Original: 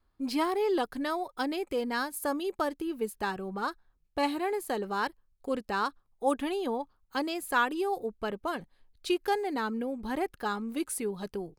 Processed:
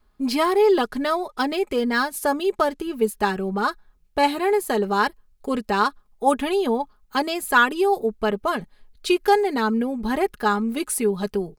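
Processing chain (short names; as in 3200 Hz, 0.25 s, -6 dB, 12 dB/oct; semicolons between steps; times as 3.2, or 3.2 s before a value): comb 4.8 ms, depth 51%; 0.73–2.94 decimation joined by straight lines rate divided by 2×; gain +8.5 dB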